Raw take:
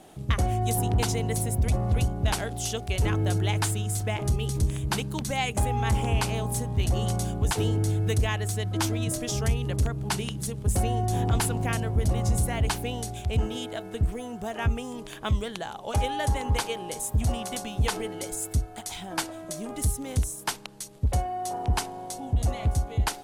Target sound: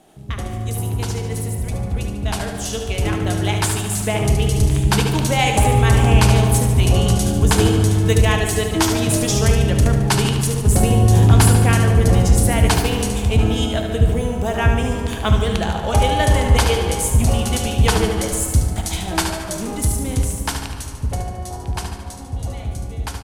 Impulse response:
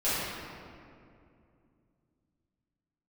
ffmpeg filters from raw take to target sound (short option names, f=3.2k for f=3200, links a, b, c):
-filter_complex "[0:a]dynaudnorm=f=210:g=31:m=12dB,aecho=1:1:73|146|219|292|365|438|511:0.447|0.25|0.14|0.0784|0.0439|0.0246|0.0138,asplit=2[a][b];[1:a]atrim=start_sample=2205[c];[b][c]afir=irnorm=-1:irlink=0,volume=-16.5dB[d];[a][d]amix=inputs=2:normalize=0,volume=-3dB"